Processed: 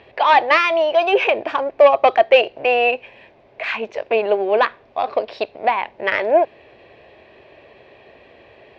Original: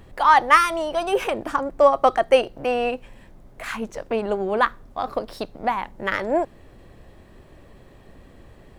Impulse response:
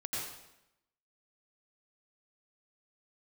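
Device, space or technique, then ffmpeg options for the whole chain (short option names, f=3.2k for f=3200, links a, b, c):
overdrive pedal into a guitar cabinet: -filter_complex "[0:a]asplit=2[a][b];[b]highpass=f=720:p=1,volume=14dB,asoftclip=type=tanh:threshold=-1.5dB[c];[a][c]amix=inputs=2:normalize=0,lowpass=f=4.8k:p=1,volume=-6dB,highpass=84,equalizer=f=180:t=q:w=4:g=-9,equalizer=f=270:t=q:w=4:g=-4,equalizer=f=420:t=q:w=4:g=5,equalizer=f=640:t=q:w=4:g=6,equalizer=f=1.3k:t=q:w=4:g=-8,equalizer=f=2.5k:t=q:w=4:g=9,lowpass=f=4.5k:w=0.5412,lowpass=f=4.5k:w=1.3066,volume=-2dB"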